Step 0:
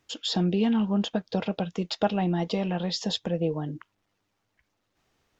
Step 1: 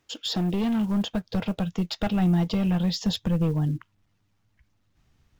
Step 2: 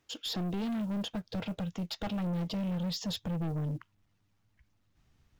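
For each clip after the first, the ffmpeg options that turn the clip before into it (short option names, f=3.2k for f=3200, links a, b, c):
-af "acrusher=bits=7:mode=log:mix=0:aa=0.000001,volume=22dB,asoftclip=hard,volume=-22dB,asubboost=boost=6.5:cutoff=180"
-af "aeval=exprs='(tanh(22.4*val(0)+0.05)-tanh(0.05))/22.4':c=same,volume=-3.5dB"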